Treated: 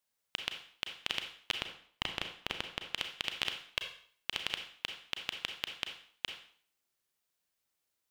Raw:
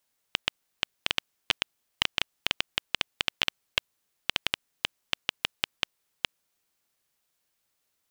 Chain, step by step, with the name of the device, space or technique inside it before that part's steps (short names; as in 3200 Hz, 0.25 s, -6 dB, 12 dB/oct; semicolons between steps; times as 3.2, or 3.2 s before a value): 1.58–2.86 tilt shelf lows +5 dB, about 1400 Hz; bathroom (reverb RT60 0.50 s, pre-delay 31 ms, DRR 5.5 dB); gain -7.5 dB